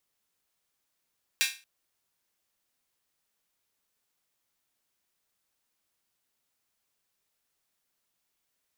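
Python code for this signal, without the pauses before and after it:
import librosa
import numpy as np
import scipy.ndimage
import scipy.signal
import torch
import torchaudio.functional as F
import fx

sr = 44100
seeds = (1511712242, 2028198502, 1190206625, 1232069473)

y = fx.drum_hat_open(sr, length_s=0.23, from_hz=2200.0, decay_s=0.32)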